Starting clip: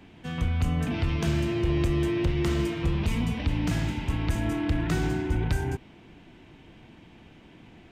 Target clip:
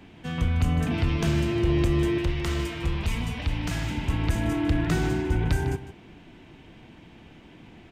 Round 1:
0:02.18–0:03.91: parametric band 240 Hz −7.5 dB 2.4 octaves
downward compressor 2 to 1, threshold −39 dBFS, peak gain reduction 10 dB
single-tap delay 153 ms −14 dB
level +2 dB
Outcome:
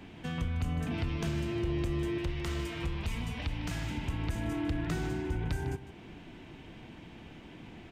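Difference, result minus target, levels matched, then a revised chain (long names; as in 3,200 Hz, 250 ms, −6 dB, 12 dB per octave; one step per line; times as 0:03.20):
downward compressor: peak gain reduction +10 dB
0:02.18–0:03.91: parametric band 240 Hz −7.5 dB 2.4 octaves
single-tap delay 153 ms −14 dB
level +2 dB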